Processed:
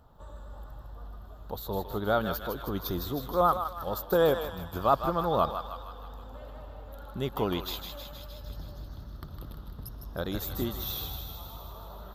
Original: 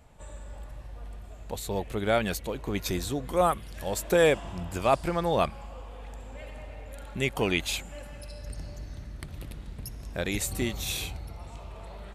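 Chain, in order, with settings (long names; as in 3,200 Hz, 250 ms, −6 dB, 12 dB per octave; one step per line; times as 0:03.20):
drawn EQ curve 700 Hz 0 dB, 1,300 Hz +6 dB, 2,300 Hz −20 dB, 3,500 Hz −1 dB, 5,300 Hz −6 dB, 9,300 Hz −21 dB, 14,000 Hz +11 dB
feedback echo with a high-pass in the loop 157 ms, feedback 68%, high-pass 910 Hz, level −6 dB
pitch vibrato 9 Hz 44 cents
0:03.64–0:04.73: downward expander −30 dBFS
level −2 dB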